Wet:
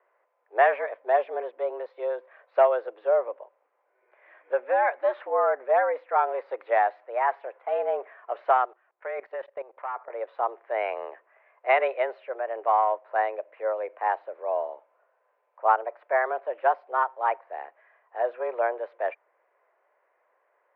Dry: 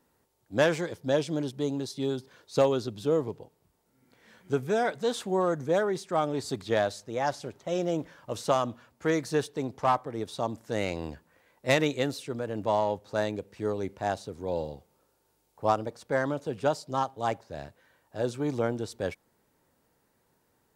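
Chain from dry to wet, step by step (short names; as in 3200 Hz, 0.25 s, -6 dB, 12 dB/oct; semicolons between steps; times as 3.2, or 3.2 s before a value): mistuned SSB +120 Hz 370–2200 Hz; 8.65–10.1 level quantiser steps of 18 dB; gain +4.5 dB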